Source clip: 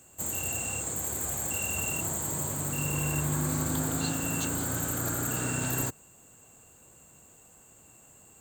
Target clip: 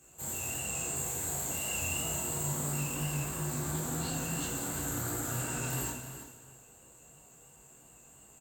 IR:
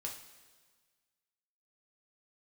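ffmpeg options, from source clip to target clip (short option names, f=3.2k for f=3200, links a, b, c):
-filter_complex "[0:a]asoftclip=type=tanh:threshold=-29dB,flanger=delay=19:depth=6.1:speed=2.9,asettb=1/sr,asplit=3[a][b][c];[a]atrim=end=0.684[d];[b]atrim=start=0.68:end=2.79,asetpts=PTS-STARTPTS,afade=t=in:d=0.004:c=qsin,afade=t=out:st=2.106:d=0.004:c=qsin,asplit=2[e][f];[f]adelay=36,volume=-4dB[g];[e][g]amix=inputs=2:normalize=0,atrim=end_sample=93051[h];[c]atrim=start=2.786[i];[d][h]acrossfade=d=0.004:c1=hsin:c2=qsin[j];[j][i]acrossfade=d=0.004:c1=qsin:c2=hsin,aecho=1:1:333:0.251[k];[1:a]atrim=start_sample=2205,asetrate=34839,aresample=44100[l];[k][l]afir=irnorm=-1:irlink=0,volume=1.5dB"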